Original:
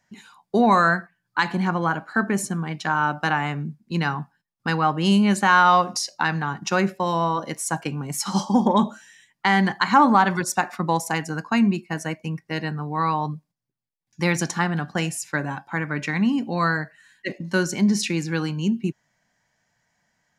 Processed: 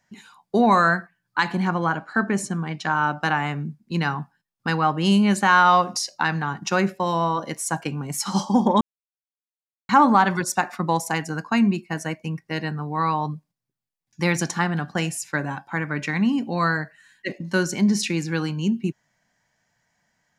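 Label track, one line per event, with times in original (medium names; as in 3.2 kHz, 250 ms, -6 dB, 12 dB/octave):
1.860000	3.230000	low-pass 9 kHz
8.810000	9.890000	mute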